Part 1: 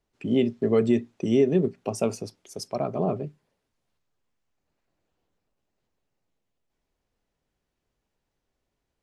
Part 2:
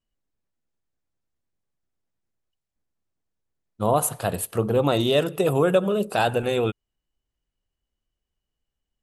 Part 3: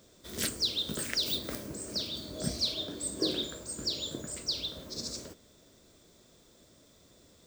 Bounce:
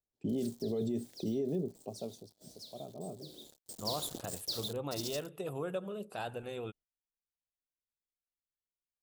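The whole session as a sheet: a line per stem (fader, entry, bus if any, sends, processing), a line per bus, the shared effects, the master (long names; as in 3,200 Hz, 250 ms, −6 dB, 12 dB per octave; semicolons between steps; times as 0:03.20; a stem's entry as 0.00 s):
0:01.40 −4.5 dB → 0:02.11 −17.5 dB, 0.00 s, bus A, no send, no processing
−18.0 dB, 0.00 s, no bus, no send, no processing
−4.0 dB, 0.00 s, bus A, no send, high-pass filter 120 Hz 12 dB per octave; bit-depth reduction 6 bits, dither none; automatic ducking −17 dB, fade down 0.85 s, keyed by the first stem
bus A: 0.0 dB, flat-topped bell 1,700 Hz −13 dB; brickwall limiter −26.5 dBFS, peak gain reduction 11.5 dB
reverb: not used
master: noise gate −57 dBFS, range −14 dB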